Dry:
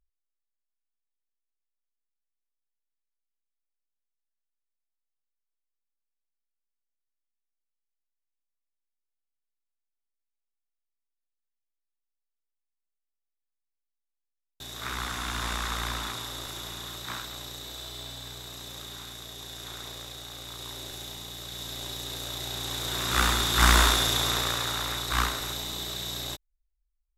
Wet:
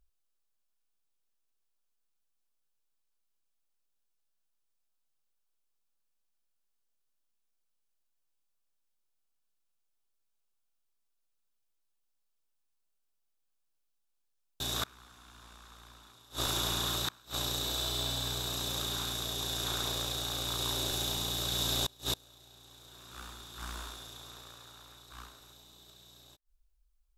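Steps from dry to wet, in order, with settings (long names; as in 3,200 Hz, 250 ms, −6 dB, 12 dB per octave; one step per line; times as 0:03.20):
parametric band 2,000 Hz −9 dB 0.3 octaves
gate with flip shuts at −26 dBFS, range −29 dB
level +6.5 dB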